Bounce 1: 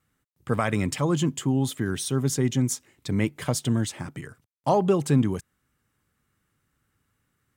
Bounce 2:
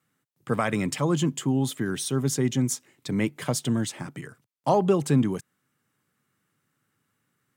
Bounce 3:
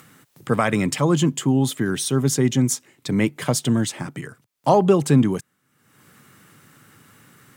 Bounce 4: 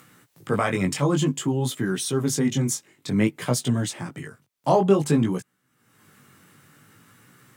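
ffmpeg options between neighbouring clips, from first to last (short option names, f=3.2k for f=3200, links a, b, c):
-af "highpass=f=120:w=0.5412,highpass=f=120:w=1.3066"
-af "acompressor=mode=upward:threshold=-41dB:ratio=2.5,volume=5.5dB"
-af "flanger=delay=16:depth=5.6:speed=0.54"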